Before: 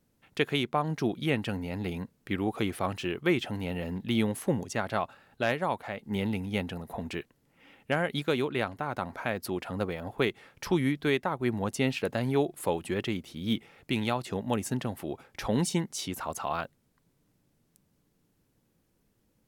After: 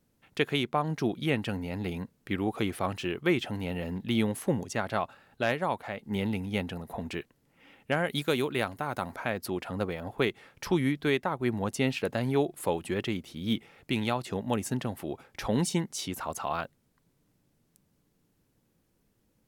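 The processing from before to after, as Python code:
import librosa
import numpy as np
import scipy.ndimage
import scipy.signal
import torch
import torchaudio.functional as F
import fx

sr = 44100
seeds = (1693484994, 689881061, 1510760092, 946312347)

y = fx.high_shelf(x, sr, hz=6900.0, db=12.0, at=(8.06, 9.16))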